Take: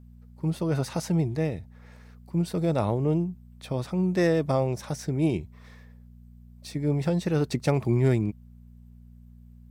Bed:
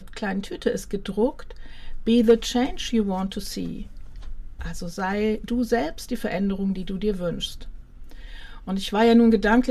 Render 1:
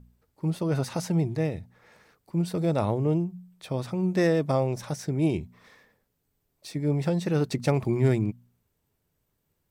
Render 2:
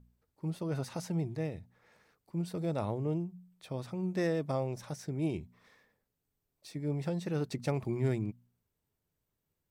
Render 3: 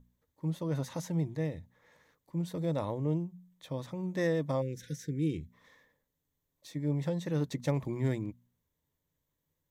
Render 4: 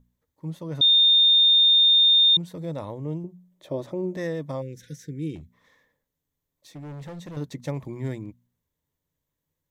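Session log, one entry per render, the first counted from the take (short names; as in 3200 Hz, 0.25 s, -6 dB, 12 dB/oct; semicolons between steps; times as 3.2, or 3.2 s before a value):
de-hum 60 Hz, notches 4
gain -8.5 dB
4.61–5.5 spectral delete 520–1400 Hz; ripple EQ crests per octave 1.1, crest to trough 7 dB
0.81–2.37 bleep 3640 Hz -13.5 dBFS; 3.24–4.17 small resonant body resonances 370/580 Hz, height 15 dB, ringing for 30 ms; 5.35–7.37 hard clip -35.5 dBFS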